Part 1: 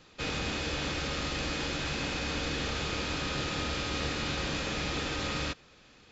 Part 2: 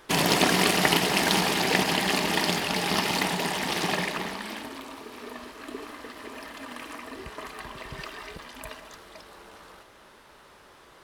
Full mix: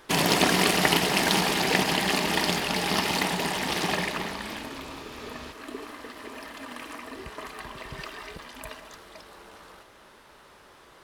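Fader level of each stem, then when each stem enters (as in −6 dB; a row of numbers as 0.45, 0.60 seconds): −12.0, 0.0 decibels; 0.00, 0.00 seconds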